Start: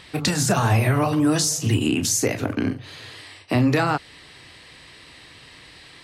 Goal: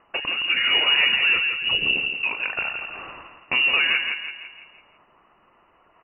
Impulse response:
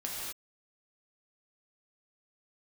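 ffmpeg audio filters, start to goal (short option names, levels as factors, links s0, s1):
-filter_complex "[0:a]asettb=1/sr,asplit=3[s0][s1][s2];[s0]atrim=end=1.964[s3];[s1]atrim=start=1.96:end=2.87,asetpts=PTS-STARTPTS,afade=t=in:d=0.004:c=qsin,afade=t=out:st=0.906:d=0.004:c=qsin,highpass=f=310:p=1[s4];[s2]atrim=start=2.866[s5];[s3][s4]acrossfade=d=0.004:c1=hsin:c2=qsin[s6];[s6][s5]acrossfade=d=0.004:c1=qsin:c2=hsin,agate=range=0.126:threshold=0.0112:ratio=16:detection=peak,tiltshelf=f=1200:g=-8.5,acrossover=split=840[s7][s8];[s8]acompressor=threshold=0.0251:ratio=12[s9];[s7][s9]amix=inputs=2:normalize=0,aphaser=in_gain=1:out_gain=1:delay=4.1:decay=0.25:speed=1:type=sinusoidal,asplit=2[s10][s11];[s11]adelay=167,lowpass=f=2300:p=1,volume=0.562,asplit=2[s12][s13];[s13]adelay=167,lowpass=f=2300:p=1,volume=0.5,asplit=2[s14][s15];[s15]adelay=167,lowpass=f=2300:p=1,volume=0.5,asplit=2[s16][s17];[s17]adelay=167,lowpass=f=2300:p=1,volume=0.5,asplit=2[s18][s19];[s19]adelay=167,lowpass=f=2300:p=1,volume=0.5,asplit=2[s20][s21];[s21]adelay=167,lowpass=f=2300:p=1,volume=0.5[s22];[s10][s12][s14][s16][s18][s20][s22]amix=inputs=7:normalize=0,lowpass=f=2600:t=q:w=0.5098,lowpass=f=2600:t=q:w=0.6013,lowpass=f=2600:t=q:w=0.9,lowpass=f=2600:t=q:w=2.563,afreqshift=-3000,volume=1.78"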